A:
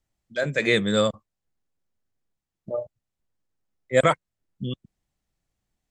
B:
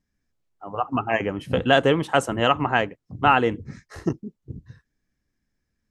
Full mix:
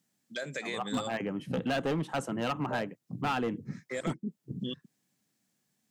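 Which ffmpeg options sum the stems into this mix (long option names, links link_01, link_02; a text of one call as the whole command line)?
ffmpeg -i stem1.wav -i stem2.wav -filter_complex "[0:a]highshelf=frequency=3600:gain=10.5,acompressor=threshold=-29dB:ratio=6,volume=0dB[link_01];[1:a]bass=frequency=250:gain=11,treble=frequency=4000:gain=-1,volume=-5dB[link_02];[link_01][link_02]amix=inputs=2:normalize=0,highpass=frequency=160:width=0.5412,highpass=frequency=160:width=1.3066,volume=19.5dB,asoftclip=hard,volume=-19.5dB,alimiter=level_in=1.5dB:limit=-24dB:level=0:latency=1:release=220,volume=-1.5dB" out.wav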